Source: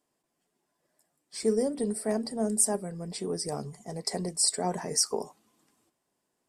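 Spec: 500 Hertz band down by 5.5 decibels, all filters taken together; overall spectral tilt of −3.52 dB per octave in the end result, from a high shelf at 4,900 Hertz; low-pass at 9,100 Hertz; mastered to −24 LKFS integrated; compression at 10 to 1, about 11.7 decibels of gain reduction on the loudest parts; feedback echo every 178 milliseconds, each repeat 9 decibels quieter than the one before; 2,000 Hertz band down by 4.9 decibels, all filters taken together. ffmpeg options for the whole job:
ffmpeg -i in.wav -af "lowpass=9100,equalizer=frequency=500:width_type=o:gain=-6.5,equalizer=frequency=2000:width_type=o:gain=-6.5,highshelf=frequency=4900:gain=7.5,acompressor=threshold=-29dB:ratio=10,aecho=1:1:178|356|534|712:0.355|0.124|0.0435|0.0152,volume=10dB" out.wav

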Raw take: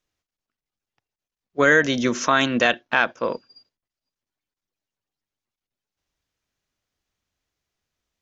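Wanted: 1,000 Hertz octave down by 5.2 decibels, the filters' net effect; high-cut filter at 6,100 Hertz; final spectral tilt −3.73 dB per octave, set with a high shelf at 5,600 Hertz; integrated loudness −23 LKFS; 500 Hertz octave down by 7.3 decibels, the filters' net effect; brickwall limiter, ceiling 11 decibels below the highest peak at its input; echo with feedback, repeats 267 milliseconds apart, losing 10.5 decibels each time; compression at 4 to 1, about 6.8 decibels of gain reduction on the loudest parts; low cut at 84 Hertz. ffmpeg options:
ffmpeg -i in.wav -af "highpass=84,lowpass=6100,equalizer=frequency=500:width_type=o:gain=-7.5,equalizer=frequency=1000:width_type=o:gain=-5,highshelf=frequency=5600:gain=-3,acompressor=threshold=-22dB:ratio=4,alimiter=limit=-21dB:level=0:latency=1,aecho=1:1:267|534|801:0.299|0.0896|0.0269,volume=8.5dB" out.wav

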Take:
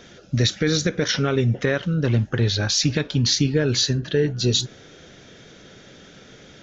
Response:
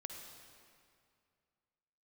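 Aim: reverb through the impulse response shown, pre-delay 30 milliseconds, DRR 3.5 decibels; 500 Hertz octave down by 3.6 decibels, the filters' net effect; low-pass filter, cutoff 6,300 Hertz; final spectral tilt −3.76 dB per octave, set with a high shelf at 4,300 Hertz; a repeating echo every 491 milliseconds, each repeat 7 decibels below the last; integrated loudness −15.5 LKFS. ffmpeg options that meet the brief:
-filter_complex "[0:a]lowpass=6300,equalizer=frequency=500:width_type=o:gain=-4.5,highshelf=frequency=4300:gain=7.5,aecho=1:1:491|982|1473|1964|2455:0.447|0.201|0.0905|0.0407|0.0183,asplit=2[link_01][link_02];[1:a]atrim=start_sample=2205,adelay=30[link_03];[link_02][link_03]afir=irnorm=-1:irlink=0,volume=-0.5dB[link_04];[link_01][link_04]amix=inputs=2:normalize=0,volume=3dB"

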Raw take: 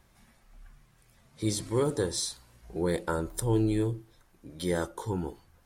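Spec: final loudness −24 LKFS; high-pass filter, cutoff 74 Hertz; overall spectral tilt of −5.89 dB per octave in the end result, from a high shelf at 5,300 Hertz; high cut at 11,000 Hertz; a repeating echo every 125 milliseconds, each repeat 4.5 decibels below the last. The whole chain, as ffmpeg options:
ffmpeg -i in.wav -af "highpass=74,lowpass=11000,highshelf=frequency=5300:gain=-5.5,aecho=1:1:125|250|375|500|625|750|875|1000|1125:0.596|0.357|0.214|0.129|0.0772|0.0463|0.0278|0.0167|0.01,volume=5.5dB" out.wav

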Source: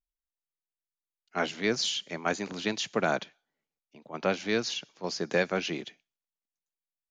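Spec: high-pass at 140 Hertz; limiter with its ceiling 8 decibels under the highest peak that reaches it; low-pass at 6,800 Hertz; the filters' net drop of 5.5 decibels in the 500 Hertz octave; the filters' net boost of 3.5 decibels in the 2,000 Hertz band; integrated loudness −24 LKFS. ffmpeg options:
ffmpeg -i in.wav -af "highpass=140,lowpass=6800,equalizer=frequency=500:width_type=o:gain=-7,equalizer=frequency=2000:width_type=o:gain=5,volume=9.5dB,alimiter=limit=-10.5dB:level=0:latency=1" out.wav

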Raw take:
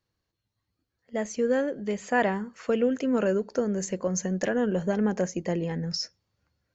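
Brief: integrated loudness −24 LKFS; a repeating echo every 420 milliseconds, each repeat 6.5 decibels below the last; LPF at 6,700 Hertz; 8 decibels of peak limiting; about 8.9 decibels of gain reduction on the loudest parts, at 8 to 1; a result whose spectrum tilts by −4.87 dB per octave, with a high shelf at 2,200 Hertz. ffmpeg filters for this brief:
ffmpeg -i in.wav -af "lowpass=6700,highshelf=frequency=2200:gain=4,acompressor=threshold=-29dB:ratio=8,alimiter=level_in=2dB:limit=-24dB:level=0:latency=1,volume=-2dB,aecho=1:1:420|840|1260|1680|2100|2520:0.473|0.222|0.105|0.0491|0.0231|0.0109,volume=10.5dB" out.wav

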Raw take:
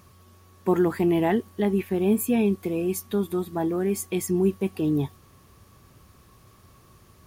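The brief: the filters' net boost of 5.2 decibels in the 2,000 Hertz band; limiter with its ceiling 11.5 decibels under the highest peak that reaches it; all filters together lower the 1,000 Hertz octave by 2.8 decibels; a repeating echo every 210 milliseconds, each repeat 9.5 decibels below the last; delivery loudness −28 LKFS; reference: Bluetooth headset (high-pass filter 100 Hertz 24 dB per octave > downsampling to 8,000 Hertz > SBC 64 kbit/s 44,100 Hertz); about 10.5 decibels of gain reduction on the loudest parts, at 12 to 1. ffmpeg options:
ffmpeg -i in.wav -af "equalizer=frequency=1000:width_type=o:gain=-5.5,equalizer=frequency=2000:width_type=o:gain=7.5,acompressor=threshold=-28dB:ratio=12,alimiter=level_in=6dB:limit=-24dB:level=0:latency=1,volume=-6dB,highpass=frequency=100:width=0.5412,highpass=frequency=100:width=1.3066,aecho=1:1:210|420|630|840:0.335|0.111|0.0365|0.012,aresample=8000,aresample=44100,volume=10.5dB" -ar 44100 -c:a sbc -b:a 64k out.sbc

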